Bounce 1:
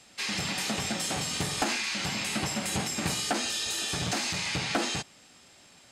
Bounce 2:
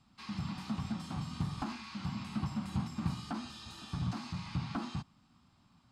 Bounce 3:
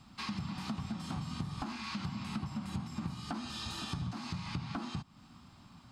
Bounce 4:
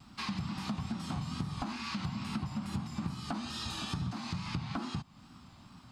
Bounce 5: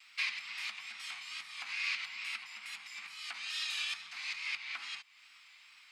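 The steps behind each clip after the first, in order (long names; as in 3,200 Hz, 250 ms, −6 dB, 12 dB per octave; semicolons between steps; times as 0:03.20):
drawn EQ curve 120 Hz 0 dB, 240 Hz −3 dB, 480 Hz −25 dB, 1,100 Hz −5 dB, 1,800 Hz −21 dB, 4,700 Hz −18 dB, 6,600 Hz −27 dB; level +1 dB
downward compressor 6 to 1, threshold −46 dBFS, peak gain reduction 17 dB; level +10 dB
pitch vibrato 2.3 Hz 64 cents; level +2 dB
high-pass with resonance 2,200 Hz, resonance Q 4.6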